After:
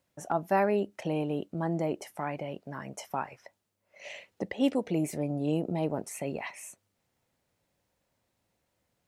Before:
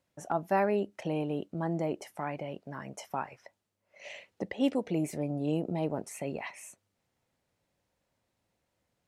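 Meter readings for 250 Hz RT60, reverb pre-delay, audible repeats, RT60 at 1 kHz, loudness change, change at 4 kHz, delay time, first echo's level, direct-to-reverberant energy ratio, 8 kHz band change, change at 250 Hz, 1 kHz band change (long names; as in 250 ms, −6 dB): no reverb audible, no reverb audible, no echo audible, no reverb audible, +1.5 dB, +2.0 dB, no echo audible, no echo audible, no reverb audible, +3.0 dB, +1.5 dB, +1.5 dB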